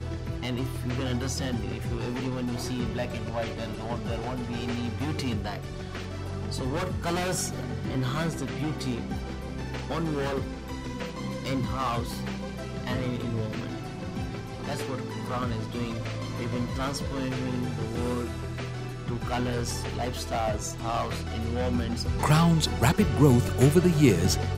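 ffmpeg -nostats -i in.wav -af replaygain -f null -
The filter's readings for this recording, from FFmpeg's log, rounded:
track_gain = +10.4 dB
track_peak = 0.341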